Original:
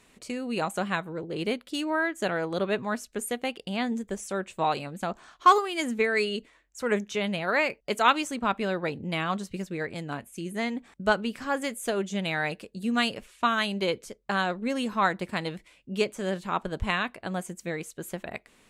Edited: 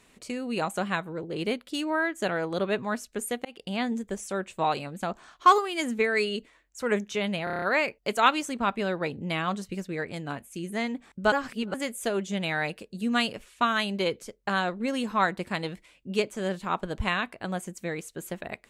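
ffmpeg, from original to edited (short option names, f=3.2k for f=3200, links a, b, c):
-filter_complex "[0:a]asplit=10[a][b][c][d][e][f][g][h][i][j];[a]atrim=end=3.45,asetpts=PTS-STARTPTS,afade=t=out:st=3.446:d=0.004:c=hsin[k];[b]atrim=start=3.45:end=7.472,asetpts=PTS-STARTPTS,afade=t=in:d=0.28:c=qsin[l];[c]atrim=start=7.438:end=7.472[m];[d]atrim=start=7.438:end=7.472[n];[e]atrim=start=7.438:end=7.472[o];[f]atrim=start=7.438:end=7.472[p];[g]atrim=start=7.438:end=7.472[q];[h]atrim=start=7.438:end=11.142[r];[i]atrim=start=11.138:end=11.562,asetpts=PTS-STARTPTS,areverse[s];[j]atrim=start=11.558[t];[k][l]concat=n=2:v=0:a=1[u];[u][m]acrossfade=d=0.004:c1=hsin:c2=hsin[v];[v][n]acrossfade=d=0.004:c1=hsin:c2=hsin[w];[w][o]acrossfade=d=0.004:c1=hsin:c2=hsin[x];[x][p]acrossfade=d=0.004:c1=hsin:c2=hsin[y];[y][q]acrossfade=d=0.004:c1=hsin:c2=hsin[z];[z][r]acrossfade=d=0.004:c1=hsin:c2=hsin[aa];[aa][s]acrossfade=d=0.004:c1=hsin:c2=hsin[ab];[ab][t]acrossfade=d=0.004:c1=hsin:c2=hsin"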